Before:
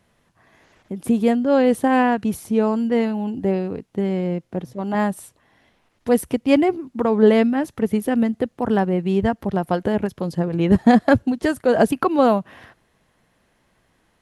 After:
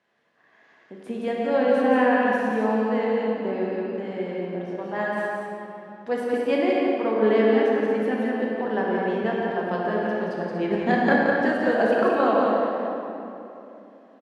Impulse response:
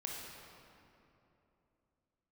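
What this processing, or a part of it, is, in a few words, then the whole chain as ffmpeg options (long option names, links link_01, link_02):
station announcement: -filter_complex "[0:a]highpass=310,lowpass=4500,equalizer=frequency=1700:width_type=o:width=0.25:gain=6,aecho=1:1:174.9|239.1:0.631|0.355[link_01];[1:a]atrim=start_sample=2205[link_02];[link_01][link_02]afir=irnorm=-1:irlink=0,volume=-3.5dB"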